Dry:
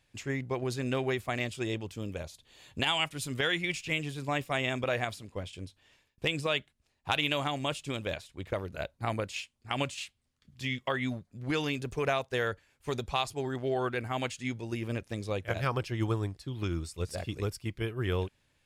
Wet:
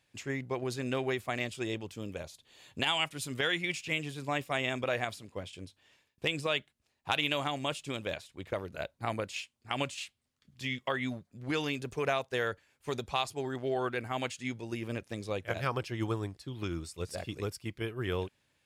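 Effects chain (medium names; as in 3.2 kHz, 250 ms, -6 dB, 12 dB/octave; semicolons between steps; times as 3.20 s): high-pass 130 Hz 6 dB/octave; trim -1 dB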